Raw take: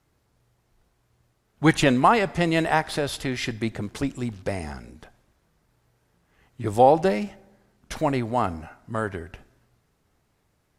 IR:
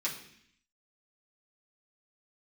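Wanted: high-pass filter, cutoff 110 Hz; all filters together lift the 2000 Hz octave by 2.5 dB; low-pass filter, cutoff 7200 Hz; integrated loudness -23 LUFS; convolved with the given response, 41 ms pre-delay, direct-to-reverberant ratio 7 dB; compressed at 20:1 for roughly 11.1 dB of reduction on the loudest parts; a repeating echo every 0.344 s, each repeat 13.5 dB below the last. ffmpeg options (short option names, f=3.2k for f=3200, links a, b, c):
-filter_complex "[0:a]highpass=110,lowpass=7.2k,equalizer=f=2k:t=o:g=3,acompressor=threshold=-21dB:ratio=20,aecho=1:1:344|688:0.211|0.0444,asplit=2[a][b];[1:a]atrim=start_sample=2205,adelay=41[c];[b][c]afir=irnorm=-1:irlink=0,volume=-11.5dB[d];[a][d]amix=inputs=2:normalize=0,volume=5.5dB"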